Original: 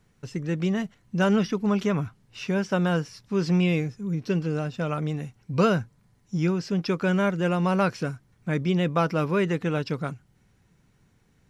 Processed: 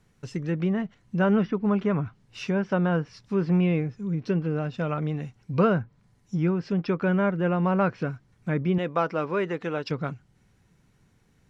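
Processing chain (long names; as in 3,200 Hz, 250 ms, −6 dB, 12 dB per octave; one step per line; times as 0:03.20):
treble cut that deepens with the level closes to 1,900 Hz, closed at −22 dBFS
0:08.78–0:09.91: bass and treble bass −11 dB, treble +12 dB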